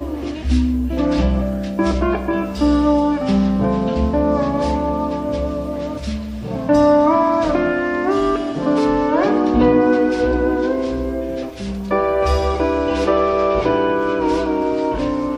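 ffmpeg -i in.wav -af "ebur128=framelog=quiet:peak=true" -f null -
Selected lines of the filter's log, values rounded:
Integrated loudness:
  I:         -18.1 LUFS
  Threshold: -28.1 LUFS
Loudness range:
  LRA:         2.7 LU
  Threshold: -37.9 LUFS
  LRA low:   -19.2 LUFS
  LRA high:  -16.5 LUFS
True peak:
  Peak:       -3.0 dBFS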